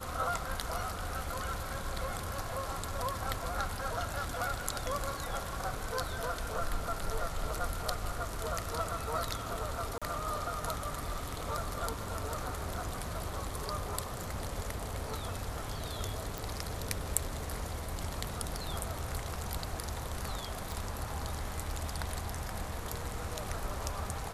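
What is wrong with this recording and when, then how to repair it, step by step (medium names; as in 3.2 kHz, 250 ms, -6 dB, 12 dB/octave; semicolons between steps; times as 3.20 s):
9.98–10.02 s: dropout 36 ms
16.38 s: pop
20.72 s: pop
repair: de-click; interpolate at 9.98 s, 36 ms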